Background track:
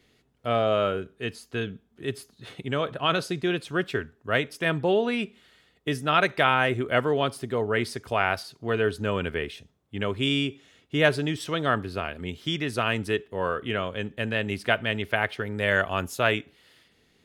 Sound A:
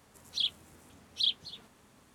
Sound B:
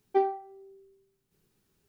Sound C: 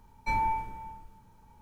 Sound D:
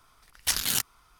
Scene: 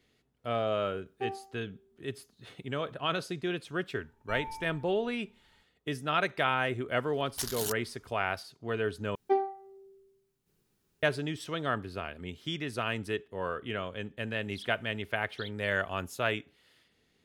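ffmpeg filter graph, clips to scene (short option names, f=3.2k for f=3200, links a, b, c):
-filter_complex "[2:a]asplit=2[a][b];[0:a]volume=-7dB[c];[4:a]equalizer=f=2.3k:t=o:w=0.92:g=-7[d];[1:a]acrossover=split=5200[e][f];[f]acompressor=threshold=-57dB:ratio=4:attack=1:release=60[g];[e][g]amix=inputs=2:normalize=0[h];[c]asplit=2[i][j];[i]atrim=end=9.154[k];[b]atrim=end=1.88,asetpts=PTS-STARTPTS,volume=-2dB[l];[j]atrim=start=11.026[m];[a]atrim=end=1.88,asetpts=PTS-STARTPTS,volume=-10dB,afade=t=in:d=0.004:c=hsin,afade=t=out:st=1.876:d=0.004:c=hsin,adelay=1060[n];[3:a]atrim=end=1.61,asetpts=PTS-STARTPTS,volume=-13.5dB,afade=t=in:d=0.004:c=hsin,afade=t=out:st=1.606:d=0.004:c=hsin,adelay=4020[o];[d]atrim=end=1.19,asetpts=PTS-STARTPTS,volume=-8.5dB,afade=t=in:d=0.004:c=hsin,afade=t=out:st=1.186:d=0.004:c=hsin,adelay=6910[p];[h]atrim=end=2.14,asetpts=PTS-STARTPTS,volume=-16dB,afade=t=in:d=0.004:c=hsin,afade=t=out:st=2.136:d=0.004:c=hsin,adelay=14180[q];[k][l]acrossfade=d=0.004:c1=hsin:c2=hsin[r];[r][m]acrossfade=d=0.004:c1=hsin:c2=hsin[s];[s][n][o][p][q]amix=inputs=5:normalize=0"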